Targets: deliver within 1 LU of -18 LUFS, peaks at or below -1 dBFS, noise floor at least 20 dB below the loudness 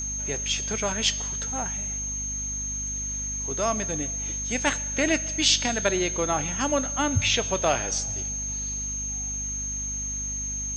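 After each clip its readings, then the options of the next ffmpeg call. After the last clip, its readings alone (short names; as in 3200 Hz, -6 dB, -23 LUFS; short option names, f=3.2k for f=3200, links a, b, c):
hum 50 Hz; harmonics up to 250 Hz; hum level -34 dBFS; steady tone 6400 Hz; tone level -29 dBFS; loudness -25.5 LUFS; peak -6.0 dBFS; loudness target -18.0 LUFS
-> -af "bandreject=f=50:t=h:w=4,bandreject=f=100:t=h:w=4,bandreject=f=150:t=h:w=4,bandreject=f=200:t=h:w=4,bandreject=f=250:t=h:w=4"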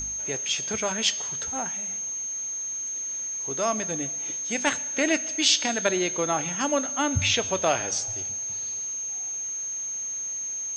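hum none; steady tone 6400 Hz; tone level -29 dBFS
-> -af "bandreject=f=6.4k:w=30"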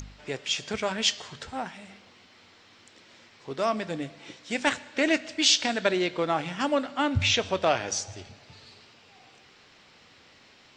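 steady tone none; loudness -26.5 LUFS; peak -7.0 dBFS; loudness target -18.0 LUFS
-> -af "volume=8.5dB,alimiter=limit=-1dB:level=0:latency=1"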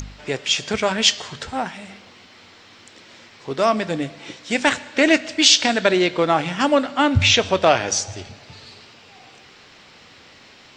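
loudness -18.5 LUFS; peak -1.0 dBFS; noise floor -48 dBFS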